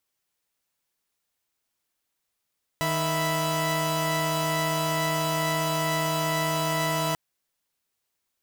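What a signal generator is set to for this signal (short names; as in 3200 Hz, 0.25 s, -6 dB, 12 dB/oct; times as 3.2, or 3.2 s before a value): chord D#3/E5/B5 saw, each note -26 dBFS 4.34 s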